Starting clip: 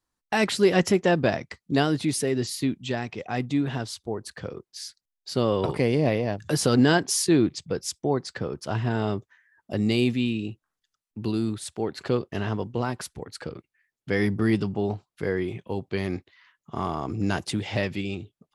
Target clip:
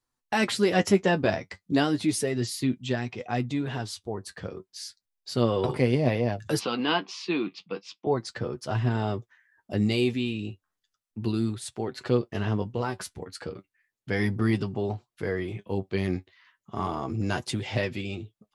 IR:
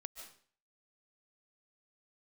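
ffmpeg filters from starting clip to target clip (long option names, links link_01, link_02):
-filter_complex "[0:a]asettb=1/sr,asplit=3[link_01][link_02][link_03];[link_01]atrim=end=6.594[link_04];[link_02]atrim=start=6.59:end=8.07,asetpts=PTS-STARTPTS,afade=type=in:duration=0.004:curve=qsin,afade=type=out:start_time=1.476:duration=0.004:curve=qsin,highpass=frequency=220:width=0.5412,highpass=frequency=220:width=1.3066,equalizer=frequency=270:width_type=q:width=4:gain=-6,equalizer=frequency=400:width_type=q:width=4:gain=-8,equalizer=frequency=600:width_type=q:width=4:gain=-9,equalizer=frequency=1100:width_type=q:width=4:gain=6,equalizer=frequency=1700:width_type=q:width=4:gain=-8,equalizer=frequency=2600:width_type=q:width=4:gain=9,lowpass=frequency=4000:width=0.5412,lowpass=frequency=4000:width=1.3066[link_05];[link_03]atrim=start=8.066[link_06];[link_04][link_05]acrossfade=duration=0.004:curve1=hsin:curve2=qsin[link_07];[link_07][link_06]acrossfade=duration=0.004:curve1=qsin:curve2=hsin,flanger=delay=7.9:depth=2.9:regen=40:speed=0.34:shape=sinusoidal,volume=2.5dB"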